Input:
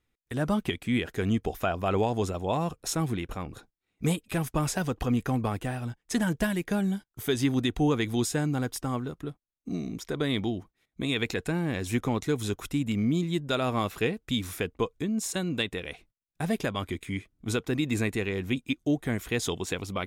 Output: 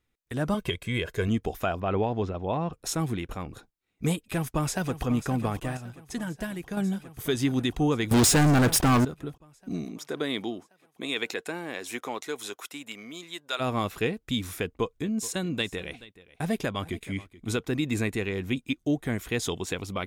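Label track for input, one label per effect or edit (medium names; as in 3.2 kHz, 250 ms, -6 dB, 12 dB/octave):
0.540000	1.280000	comb 1.9 ms
1.800000	2.730000	distance through air 240 m
4.210000	5.050000	echo throw 540 ms, feedback 80%, level -12.5 dB
5.770000	6.770000	gain -6.5 dB
8.110000	9.050000	waveshaping leveller passes 5
9.840000	13.590000	high-pass 220 Hz -> 850 Hz
14.610000	17.580000	delay 428 ms -19 dB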